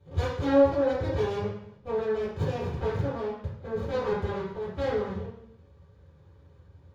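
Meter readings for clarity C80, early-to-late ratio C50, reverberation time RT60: 5.5 dB, 2.0 dB, 0.70 s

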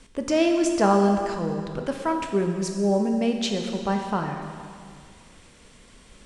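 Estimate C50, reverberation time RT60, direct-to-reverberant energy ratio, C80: 5.0 dB, 2.2 s, 3.5 dB, 6.0 dB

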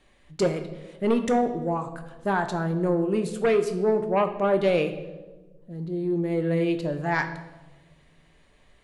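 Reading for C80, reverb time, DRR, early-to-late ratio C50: 13.0 dB, 1.2 s, 6.0 dB, 10.5 dB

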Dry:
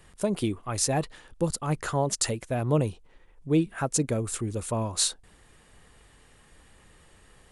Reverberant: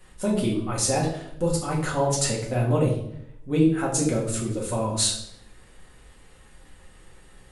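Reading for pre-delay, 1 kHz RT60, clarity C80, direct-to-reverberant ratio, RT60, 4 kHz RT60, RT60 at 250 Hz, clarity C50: 4 ms, 0.60 s, 9.0 dB, -5.0 dB, 0.75 s, 0.60 s, 0.95 s, 5.5 dB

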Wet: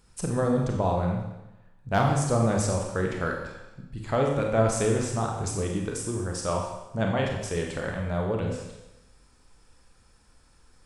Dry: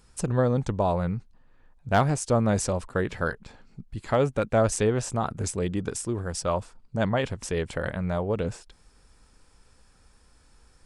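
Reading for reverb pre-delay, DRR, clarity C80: 28 ms, 0.5 dB, 5.5 dB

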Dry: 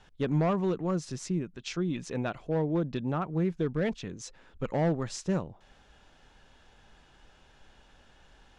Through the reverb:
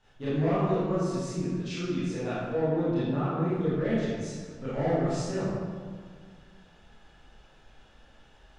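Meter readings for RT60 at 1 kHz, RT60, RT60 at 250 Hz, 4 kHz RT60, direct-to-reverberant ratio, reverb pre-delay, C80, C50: 1.7 s, 1.8 s, 2.1 s, 1.1 s, -12.5 dB, 25 ms, -1.0 dB, -4.0 dB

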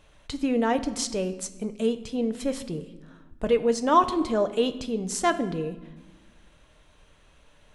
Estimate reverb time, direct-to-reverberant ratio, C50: 1.2 s, 9.0 dB, 13.5 dB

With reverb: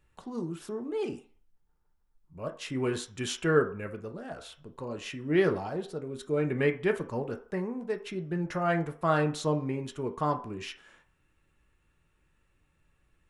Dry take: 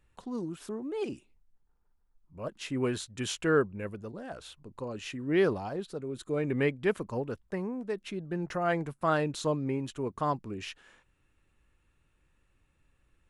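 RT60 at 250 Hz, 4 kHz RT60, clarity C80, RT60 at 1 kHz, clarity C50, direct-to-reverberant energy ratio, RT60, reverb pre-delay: 0.35 s, 0.50 s, 18.5 dB, 0.45 s, 13.5 dB, 4.5 dB, 0.45 s, 3 ms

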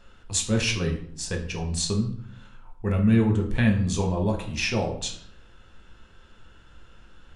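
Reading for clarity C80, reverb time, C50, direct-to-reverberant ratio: 12.5 dB, 0.60 s, 9.0 dB, 1.5 dB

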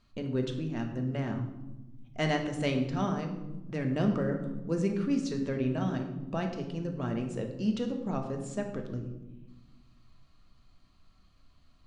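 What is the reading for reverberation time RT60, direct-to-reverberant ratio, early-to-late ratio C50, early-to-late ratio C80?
1.1 s, 3.0 dB, 7.5 dB, 9.5 dB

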